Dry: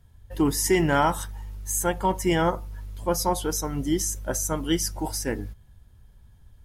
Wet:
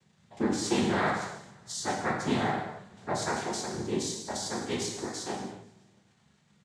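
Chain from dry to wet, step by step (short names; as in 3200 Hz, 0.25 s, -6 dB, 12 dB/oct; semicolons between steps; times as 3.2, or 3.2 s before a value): crackle 570/s -46 dBFS; on a send: feedback echo 0.162 s, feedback 60%, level -23 dB; on the sum: noise vocoder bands 6; non-linear reverb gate 0.32 s falling, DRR -0.5 dB; gain -8.5 dB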